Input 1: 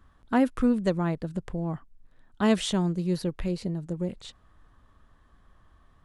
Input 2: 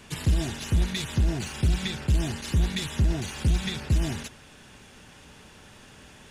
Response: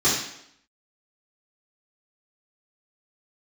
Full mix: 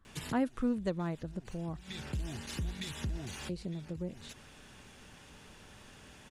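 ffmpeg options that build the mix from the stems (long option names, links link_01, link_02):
-filter_complex "[0:a]volume=-8.5dB,asplit=3[link_01][link_02][link_03];[link_01]atrim=end=1.77,asetpts=PTS-STARTPTS,afade=type=out:start_time=1.766:duration=0.004:curve=hsin[link_04];[link_02]atrim=start=1.77:end=3.49,asetpts=PTS-STARTPTS,volume=0[link_05];[link_03]atrim=start=3.49,asetpts=PTS-STARTPTS,afade=type=in:duration=0.004:curve=hsin[link_06];[link_04][link_05][link_06]concat=n=3:v=0:a=1,asplit=2[link_07][link_08];[1:a]acompressor=threshold=-33dB:ratio=2.5,adelay=50,volume=-5dB[link_09];[link_08]apad=whole_len=280130[link_10];[link_09][link_10]sidechaincompress=threshold=-51dB:ratio=16:attack=10:release=216[link_11];[link_07][link_11]amix=inputs=2:normalize=0"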